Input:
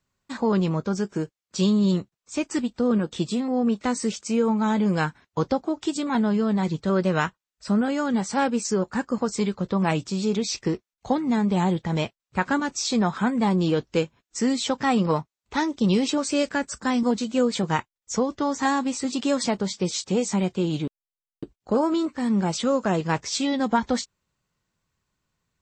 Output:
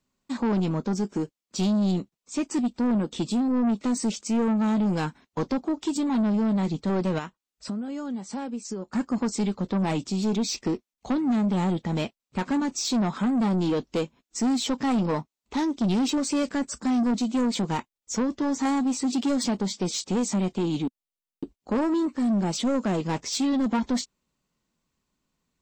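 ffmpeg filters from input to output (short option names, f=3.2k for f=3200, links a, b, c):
-filter_complex "[0:a]equalizer=f=100:t=o:w=0.67:g=-10,equalizer=f=250:t=o:w=0.67:g=7,equalizer=f=1.6k:t=o:w=0.67:g=-5,asettb=1/sr,asplit=3[a][b][c];[a]atrim=end=7.184[d];[b]atrim=start=7.18:end=8.93,asetpts=PTS-STARTPTS,afade=t=in:d=0.004:c=qsin,afade=t=out:st=1.746:d=0.004:c=qsin,acompressor=threshold=-30dB:ratio=6[e];[c]atrim=start=8.926[f];[d][e]acrossfade=d=0.004:c1=hsin:c2=qsin[g];[g][f]acrossfade=d=0.004:c1=qsin:c2=hsin,asoftclip=type=tanh:threshold=-20dB"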